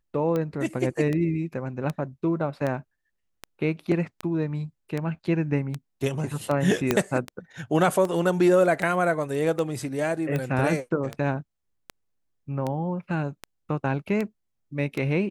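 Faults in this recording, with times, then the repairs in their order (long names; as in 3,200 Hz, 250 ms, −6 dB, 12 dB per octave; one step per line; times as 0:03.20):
scratch tick 78 rpm −16 dBFS
0:06.91: click −6 dBFS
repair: click removal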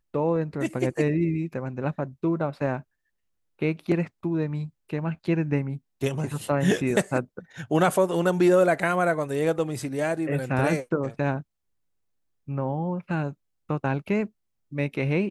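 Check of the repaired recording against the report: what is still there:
0:06.91: click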